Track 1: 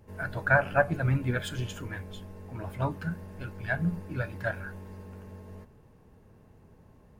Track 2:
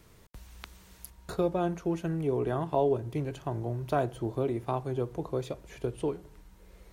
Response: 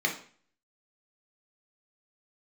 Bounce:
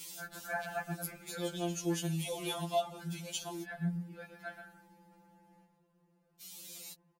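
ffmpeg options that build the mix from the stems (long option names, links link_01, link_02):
-filter_complex "[0:a]adynamicequalizer=threshold=0.00447:dfrequency=2900:dqfactor=0.7:tfrequency=2900:tqfactor=0.7:attack=5:release=100:ratio=0.375:range=3:mode=boostabove:tftype=highshelf,volume=-10.5dB,asplit=3[link_01][link_02][link_03];[link_02]volume=-8dB[link_04];[1:a]aexciter=amount=9.4:drive=6.7:freq=2500,volume=-0.5dB,asplit=3[link_05][link_06][link_07];[link_05]atrim=end=3.64,asetpts=PTS-STARTPTS,afade=type=out:start_time=3.636:duration=0.004:curve=hsin[link_08];[link_06]atrim=start=3.64:end=6.41,asetpts=PTS-STARTPTS,volume=0[link_09];[link_07]atrim=start=6.41,asetpts=PTS-STARTPTS,afade=type=in:duration=0.004:curve=hsin[link_10];[link_08][link_09][link_10]concat=n=3:v=0:a=1[link_11];[link_03]apad=whole_len=305574[link_12];[link_11][link_12]sidechaincompress=threshold=-49dB:ratio=12:attack=16:release=487[link_13];[link_04]aecho=0:1:127:1[link_14];[link_01][link_13][link_14]amix=inputs=3:normalize=0,highpass=frequency=93:poles=1,afftfilt=real='re*2.83*eq(mod(b,8),0)':imag='im*2.83*eq(mod(b,8),0)':win_size=2048:overlap=0.75"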